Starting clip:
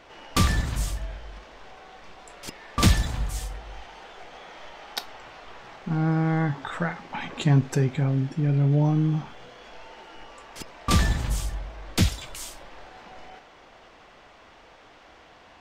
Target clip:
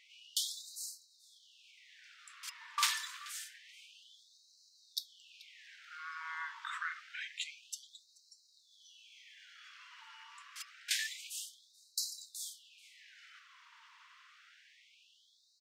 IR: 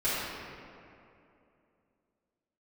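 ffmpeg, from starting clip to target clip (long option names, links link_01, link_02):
-filter_complex "[0:a]lowshelf=frequency=720:width_type=q:width=1.5:gain=6.5,asplit=2[link_01][link_02];[link_02]adelay=432,lowpass=frequency=4000:poles=1,volume=-17.5dB,asplit=2[link_03][link_04];[link_04]adelay=432,lowpass=frequency=4000:poles=1,volume=0.3,asplit=2[link_05][link_06];[link_06]adelay=432,lowpass=frequency=4000:poles=1,volume=0.3[link_07];[link_01][link_03][link_05][link_07]amix=inputs=4:normalize=0,afftfilt=real='re*gte(b*sr/1024,880*pow(3900/880,0.5+0.5*sin(2*PI*0.27*pts/sr)))':imag='im*gte(b*sr/1024,880*pow(3900/880,0.5+0.5*sin(2*PI*0.27*pts/sr)))':win_size=1024:overlap=0.75,volume=-5dB"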